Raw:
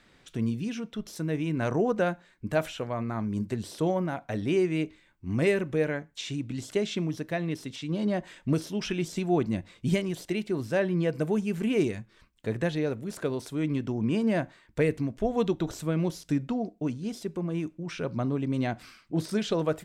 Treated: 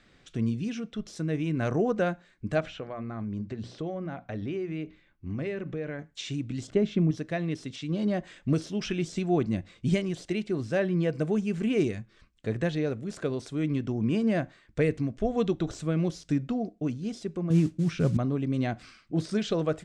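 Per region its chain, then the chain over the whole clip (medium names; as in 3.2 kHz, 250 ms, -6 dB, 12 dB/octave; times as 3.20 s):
2.60–5.99 s: hum notches 60/120/180/240 Hz + compression 2.5:1, threshold -32 dBFS + distance through air 130 m
6.67–7.11 s: low-pass 1.6 kHz 6 dB/octave + bass shelf 260 Hz +9 dB
17.50–18.17 s: peaking EQ 130 Hz +12 dB 2.2 oct + modulation noise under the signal 24 dB
whole clip: low-pass 8.3 kHz 24 dB/octave; bass shelf 180 Hz +3.5 dB; band-stop 930 Hz, Q 7.7; trim -1 dB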